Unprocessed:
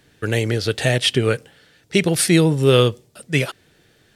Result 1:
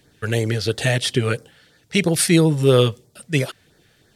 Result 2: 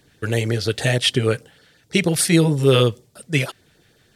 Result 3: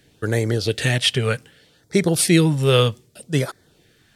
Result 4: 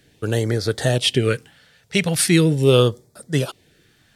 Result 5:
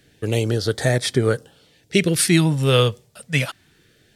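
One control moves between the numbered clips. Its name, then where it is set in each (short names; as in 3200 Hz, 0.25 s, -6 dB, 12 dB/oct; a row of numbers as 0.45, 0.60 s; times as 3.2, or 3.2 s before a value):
LFO notch, rate: 3, 6.4, 0.64, 0.4, 0.25 Hz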